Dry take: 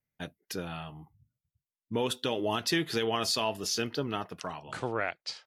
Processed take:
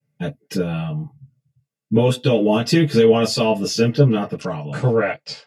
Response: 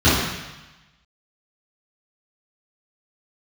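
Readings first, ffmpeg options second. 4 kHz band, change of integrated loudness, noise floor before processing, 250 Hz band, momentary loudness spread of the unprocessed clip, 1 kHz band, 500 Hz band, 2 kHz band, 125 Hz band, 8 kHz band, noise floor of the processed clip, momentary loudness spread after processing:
+5.5 dB, +13.5 dB, under -85 dBFS, +16.0 dB, 13 LU, +7.5 dB, +15.5 dB, +7.5 dB, +21.0 dB, +5.0 dB, -82 dBFS, 13 LU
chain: -filter_complex "[1:a]atrim=start_sample=2205,atrim=end_sample=3087,asetrate=79380,aresample=44100[s0];[0:a][s0]afir=irnorm=-1:irlink=0,volume=0.335"

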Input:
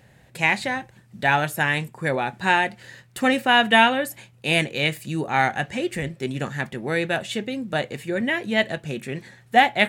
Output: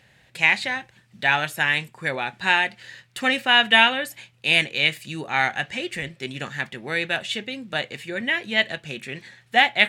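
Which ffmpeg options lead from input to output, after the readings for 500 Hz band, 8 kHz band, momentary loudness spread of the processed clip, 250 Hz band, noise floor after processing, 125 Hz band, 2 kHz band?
-5.0 dB, -2.0 dB, 15 LU, -6.5 dB, -59 dBFS, -7.0 dB, +2.0 dB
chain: -af "equalizer=f=3100:w=0.47:g=11.5,volume=0.447"

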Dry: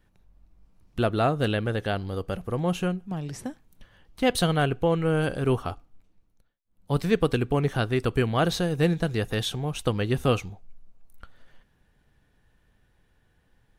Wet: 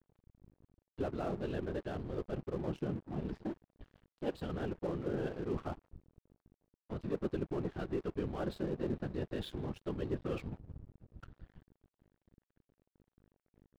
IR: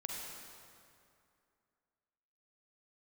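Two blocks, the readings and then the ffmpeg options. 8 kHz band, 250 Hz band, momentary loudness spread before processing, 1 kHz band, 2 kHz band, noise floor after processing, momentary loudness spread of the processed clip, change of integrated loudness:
under -25 dB, -11.0 dB, 9 LU, -16.5 dB, -19.0 dB, under -85 dBFS, 12 LU, -13.5 dB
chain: -filter_complex "[0:a]aresample=11025,asoftclip=type=tanh:threshold=0.126,aresample=44100,highshelf=f=2300:g=-11.5,aeval=exprs='val(0)+0.00224*(sin(2*PI*50*n/s)+sin(2*PI*2*50*n/s)/2+sin(2*PI*3*50*n/s)/3+sin(2*PI*4*50*n/s)/4+sin(2*PI*5*50*n/s)/5)':c=same,areverse,acompressor=threshold=0.0178:ratio=6,areverse,afftfilt=real='hypot(re,im)*cos(2*PI*random(0))':imag='hypot(re,im)*sin(2*PI*random(1))':win_size=512:overlap=0.75,adynamicequalizer=threshold=0.001:dfrequency=360:dqfactor=2:tfrequency=360:tqfactor=2:attack=5:release=100:ratio=0.375:range=3.5:mode=boostabove:tftype=bell,bandreject=f=2100:w=12,asplit=2[s0][s1];[s1]adelay=150,highpass=300,lowpass=3400,asoftclip=type=hard:threshold=0.0168,volume=0.0447[s2];[s0][s2]amix=inputs=2:normalize=0,aeval=exprs='sgn(val(0))*max(abs(val(0))-0.00168,0)':c=same,volume=1.68"

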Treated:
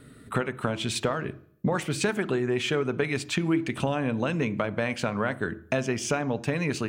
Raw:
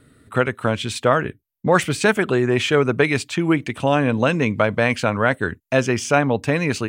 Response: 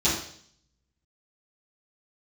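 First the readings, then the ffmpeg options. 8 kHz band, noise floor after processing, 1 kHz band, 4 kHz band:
-5.0 dB, -51 dBFS, -10.5 dB, -6.0 dB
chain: -filter_complex "[0:a]acompressor=threshold=0.0447:ratio=6,asplit=2[s0][s1];[1:a]atrim=start_sample=2205,highshelf=f=3000:g=-10[s2];[s1][s2]afir=irnorm=-1:irlink=0,volume=0.0531[s3];[s0][s3]amix=inputs=2:normalize=0,volume=1.26"

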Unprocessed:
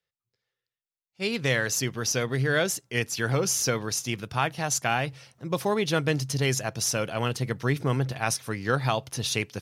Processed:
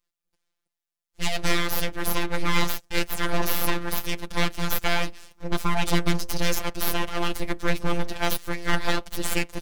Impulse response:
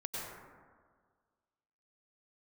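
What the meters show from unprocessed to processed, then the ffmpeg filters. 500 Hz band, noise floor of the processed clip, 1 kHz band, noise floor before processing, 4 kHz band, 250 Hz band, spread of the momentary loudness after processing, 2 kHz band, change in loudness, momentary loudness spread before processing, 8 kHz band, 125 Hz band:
-3.0 dB, under -85 dBFS, +1.5 dB, under -85 dBFS, +2.0 dB, +1.5 dB, 4 LU, +0.5 dB, -0.5 dB, 5 LU, -5.5 dB, -4.0 dB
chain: -af "aeval=exprs='abs(val(0))':c=same,afftfilt=real='hypot(re,im)*cos(PI*b)':imag='0':win_size=1024:overlap=0.75,volume=2.37"

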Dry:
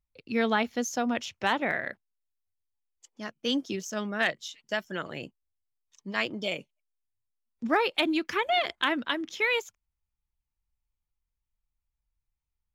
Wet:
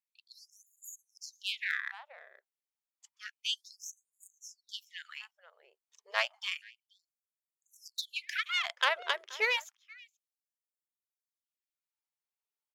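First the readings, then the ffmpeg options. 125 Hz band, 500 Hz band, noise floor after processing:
under -40 dB, -13.5 dB, under -85 dBFS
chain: -filter_complex "[0:a]aeval=exprs='0.266*(cos(1*acos(clip(val(0)/0.266,-1,1)))-cos(1*PI/2))+0.0376*(cos(2*acos(clip(val(0)/0.266,-1,1)))-cos(2*PI/2))+0.0299*(cos(3*acos(clip(val(0)/0.266,-1,1)))-cos(3*PI/2))+0.0075*(cos(6*acos(clip(val(0)/0.266,-1,1)))-cos(6*PI/2))':c=same,asplit=2[s0][s1];[s1]adelay=478.1,volume=0.1,highshelf=f=4000:g=-10.8[s2];[s0][s2]amix=inputs=2:normalize=0,afftfilt=real='re*gte(b*sr/1024,350*pow(6700/350,0.5+0.5*sin(2*PI*0.3*pts/sr)))':imag='im*gte(b*sr/1024,350*pow(6700/350,0.5+0.5*sin(2*PI*0.3*pts/sr)))':win_size=1024:overlap=0.75"

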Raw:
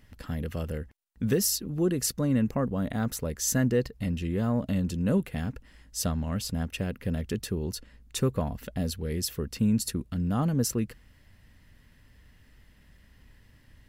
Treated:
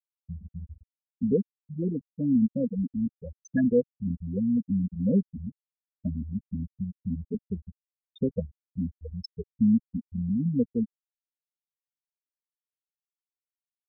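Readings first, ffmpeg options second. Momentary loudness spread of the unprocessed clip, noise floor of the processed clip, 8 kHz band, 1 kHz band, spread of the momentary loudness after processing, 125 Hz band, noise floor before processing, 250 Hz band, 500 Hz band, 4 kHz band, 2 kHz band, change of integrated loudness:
10 LU, under -85 dBFS, under -30 dB, under -25 dB, 16 LU, -3.5 dB, -58 dBFS, +2.5 dB, -0.5 dB, under -15 dB, no reading, +0.5 dB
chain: -af "afftfilt=real='re*gte(hypot(re,im),0.224)':imag='im*gte(hypot(re,im),0.224)':win_size=1024:overlap=0.75,aecho=1:1:4.2:0.67"

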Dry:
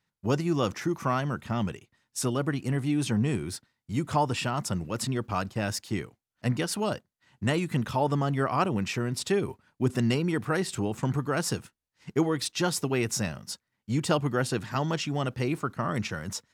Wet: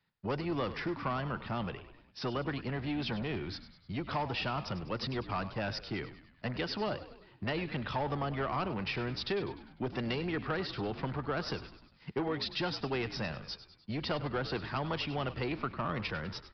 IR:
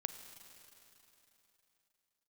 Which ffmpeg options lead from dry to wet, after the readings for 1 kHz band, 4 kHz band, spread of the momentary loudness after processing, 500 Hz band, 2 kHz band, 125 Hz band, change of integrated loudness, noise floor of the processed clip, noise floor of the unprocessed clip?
-5.5 dB, -3.0 dB, 7 LU, -6.0 dB, -3.5 dB, -9.0 dB, -7.0 dB, -63 dBFS, -84 dBFS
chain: -filter_complex "[0:a]aresample=11025,asoftclip=type=tanh:threshold=0.0841,aresample=44100,acrossover=split=87|390[s0][s1][s2];[s0]acompressor=threshold=0.00355:ratio=4[s3];[s1]acompressor=threshold=0.01:ratio=4[s4];[s2]acompressor=threshold=0.0251:ratio=4[s5];[s3][s4][s5]amix=inputs=3:normalize=0,asplit=6[s6][s7][s8][s9][s10][s11];[s7]adelay=100,afreqshift=-61,volume=0.211[s12];[s8]adelay=200,afreqshift=-122,volume=0.114[s13];[s9]adelay=300,afreqshift=-183,volume=0.0617[s14];[s10]adelay=400,afreqshift=-244,volume=0.0331[s15];[s11]adelay=500,afreqshift=-305,volume=0.018[s16];[s6][s12][s13][s14][s15][s16]amix=inputs=6:normalize=0"

